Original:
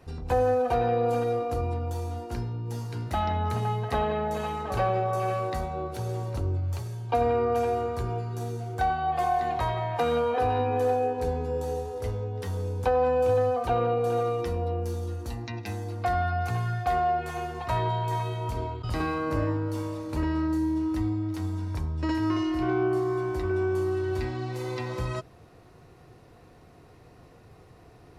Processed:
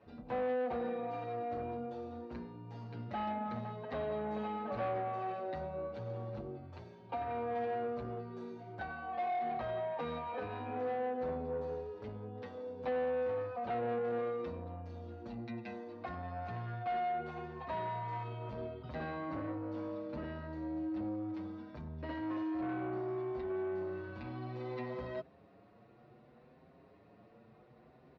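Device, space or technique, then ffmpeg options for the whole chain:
barber-pole flanger into a guitar amplifier: -filter_complex "[0:a]asplit=2[a][b];[b]adelay=6.7,afreqshift=0.66[c];[a][c]amix=inputs=2:normalize=1,asoftclip=type=tanh:threshold=-28dB,highpass=96,equalizer=f=98:t=q:w=4:g=-7,equalizer=f=220:t=q:w=4:g=9,equalizer=f=590:t=q:w=4:g=7,equalizer=f=3.1k:t=q:w=4:g=-3,lowpass=f=3.8k:w=0.5412,lowpass=f=3.8k:w=1.3066,volume=-6dB"

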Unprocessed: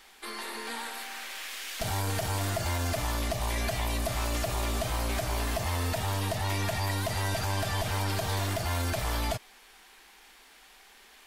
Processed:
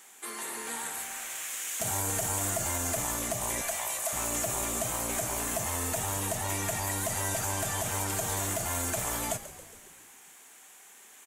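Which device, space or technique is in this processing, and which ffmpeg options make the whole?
budget condenser microphone: -filter_complex "[0:a]highpass=120,highshelf=f=5.8k:t=q:w=3:g=7,asettb=1/sr,asplit=3[a][b][c];[a]atrim=end=3.614[d];[b]atrim=start=3.61:end=4.13,asetpts=PTS-STARTPTS,afade=t=in:d=0.004:c=qsin,afade=t=out:st=0.516:d=0.004:c=qsin,highpass=f=570:w=0.5412,highpass=f=570:w=1.3066[e];[c]atrim=start=4.126[f];[d][e]acrossfade=d=0.004:c1=hsin:c2=qsin[g];[g][f]acrossfade=d=0.004:c1=qsin:c2=hsin,asplit=8[h][i][j][k][l][m][n][o];[i]adelay=137,afreqshift=-68,volume=-14.5dB[p];[j]adelay=274,afreqshift=-136,volume=-18.7dB[q];[k]adelay=411,afreqshift=-204,volume=-22.8dB[r];[l]adelay=548,afreqshift=-272,volume=-27dB[s];[m]adelay=685,afreqshift=-340,volume=-31.1dB[t];[n]adelay=822,afreqshift=-408,volume=-35.3dB[u];[o]adelay=959,afreqshift=-476,volume=-39.4dB[v];[h][p][q][r][s][t][u][v]amix=inputs=8:normalize=0,volume=-1.5dB"

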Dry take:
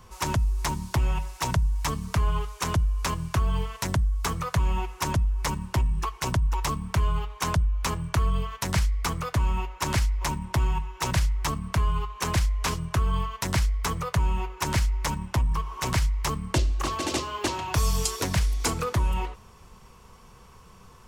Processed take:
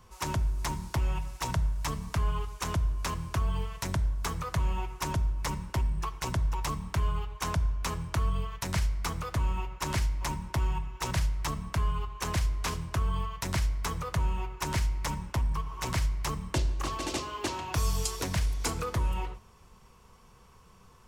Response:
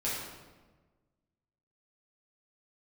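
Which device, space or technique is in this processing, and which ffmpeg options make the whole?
keyed gated reverb: -filter_complex "[0:a]asplit=3[a][b][c];[1:a]atrim=start_sample=2205[d];[b][d]afir=irnorm=-1:irlink=0[e];[c]apad=whole_len=929284[f];[e][f]sidechaingate=range=-33dB:threshold=-38dB:ratio=16:detection=peak,volume=-17.5dB[g];[a][g]amix=inputs=2:normalize=0,volume=-6dB"

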